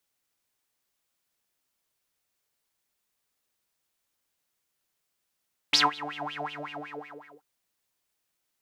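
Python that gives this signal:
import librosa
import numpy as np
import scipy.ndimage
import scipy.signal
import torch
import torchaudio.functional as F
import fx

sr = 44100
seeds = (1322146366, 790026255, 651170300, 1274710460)

y = fx.sub_patch_wobble(sr, seeds[0], note=62, wave='triangle', wave2='saw', interval_st=-12, level2_db=-6.0, sub_db=-4.5, noise_db=-30.0, kind='bandpass', cutoff_hz=880.0, q=11.0, env_oct=1.5, env_decay_s=0.35, env_sustain_pct=45, attack_ms=5.2, decay_s=0.17, sustain_db=-22.5, release_s=1.0, note_s=0.69, lfo_hz=5.4, wobble_oct=1.2)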